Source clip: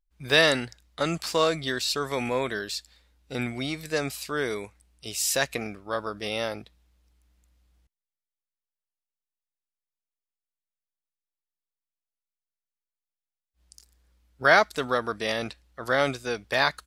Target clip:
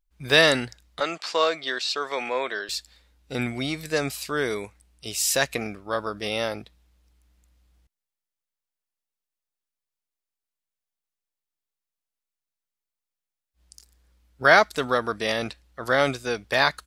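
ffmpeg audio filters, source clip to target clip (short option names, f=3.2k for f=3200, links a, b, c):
-filter_complex "[0:a]asettb=1/sr,asplit=3[a][b][c];[a]atrim=end=1.004[d];[b]atrim=start=1:end=2.69,asetpts=PTS-STARTPTS,afade=t=in:d=0.004:c=qsin,afade=t=out:st=1.686:d=0.004:c=qsin,highpass=470,lowpass=5k[e];[c]atrim=start=2.686[f];[d][e]acrossfade=d=0.004:c1=hsin:c2=qsin[g];[g][f]acrossfade=d=0.004:c1=qsin:c2=hsin,volume=2.5dB"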